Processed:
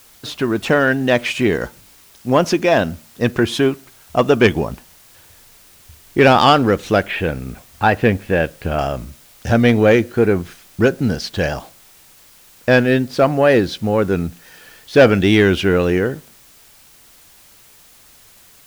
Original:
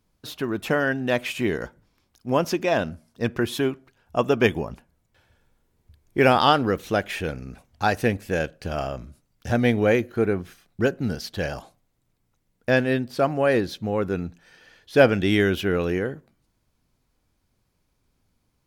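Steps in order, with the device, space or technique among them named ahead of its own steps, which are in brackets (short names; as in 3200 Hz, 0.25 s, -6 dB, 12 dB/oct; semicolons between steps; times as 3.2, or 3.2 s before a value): 7.03–8.79 LPF 3300 Hz 24 dB/oct; compact cassette (soft clip -10.5 dBFS, distortion -18 dB; LPF 8700 Hz; wow and flutter; white noise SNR 30 dB); gain +8.5 dB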